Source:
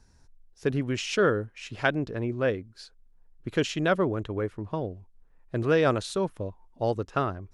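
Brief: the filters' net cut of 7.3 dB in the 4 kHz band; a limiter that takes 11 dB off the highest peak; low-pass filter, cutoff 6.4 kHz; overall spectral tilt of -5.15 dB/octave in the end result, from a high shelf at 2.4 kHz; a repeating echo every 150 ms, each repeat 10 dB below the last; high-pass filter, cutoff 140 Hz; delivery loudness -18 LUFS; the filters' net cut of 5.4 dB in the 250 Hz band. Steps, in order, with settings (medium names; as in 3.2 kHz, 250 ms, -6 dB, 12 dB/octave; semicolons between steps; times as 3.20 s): high-pass 140 Hz; low-pass 6.4 kHz; peaking EQ 250 Hz -7 dB; treble shelf 2.4 kHz -4.5 dB; peaking EQ 4 kHz -5.5 dB; peak limiter -20.5 dBFS; feedback delay 150 ms, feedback 32%, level -10 dB; trim +15.5 dB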